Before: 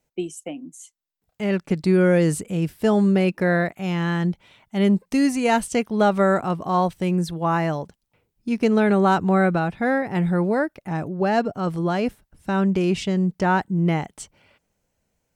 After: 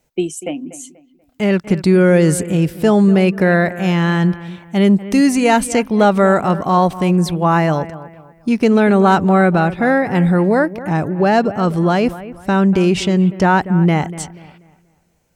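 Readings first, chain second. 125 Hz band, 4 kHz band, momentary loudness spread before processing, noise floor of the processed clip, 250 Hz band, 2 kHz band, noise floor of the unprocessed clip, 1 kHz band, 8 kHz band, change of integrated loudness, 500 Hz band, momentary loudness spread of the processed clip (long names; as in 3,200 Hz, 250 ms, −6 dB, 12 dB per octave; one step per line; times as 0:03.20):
+7.5 dB, +7.5 dB, 13 LU, −57 dBFS, +7.0 dB, +7.0 dB, −77 dBFS, +7.0 dB, +8.5 dB, +7.0 dB, +6.5 dB, 11 LU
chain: in parallel at −1 dB: brickwall limiter −18 dBFS, peak gain reduction 10.5 dB
on the sum: bucket-brigade delay 242 ms, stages 4,096, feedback 33%, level −15.5 dB
level +3.5 dB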